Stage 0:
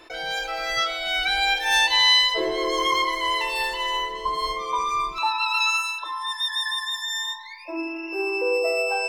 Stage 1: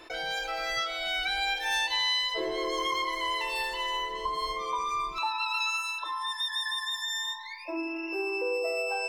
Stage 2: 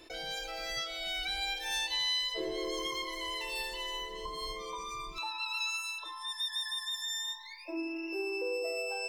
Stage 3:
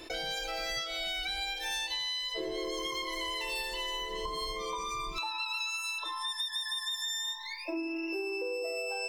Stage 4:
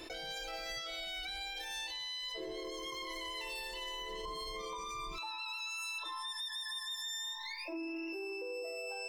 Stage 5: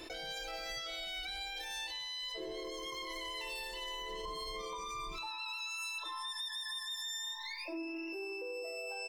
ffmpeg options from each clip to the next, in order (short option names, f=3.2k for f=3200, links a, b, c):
-af "acompressor=threshold=-31dB:ratio=2,volume=-1dB"
-af "equalizer=f=1.2k:w=0.62:g=-11.5"
-af "acompressor=threshold=-40dB:ratio=6,volume=7.5dB"
-af "alimiter=level_in=9dB:limit=-24dB:level=0:latency=1:release=61,volume=-9dB,volume=-1dB"
-af "aecho=1:1:96:0.133"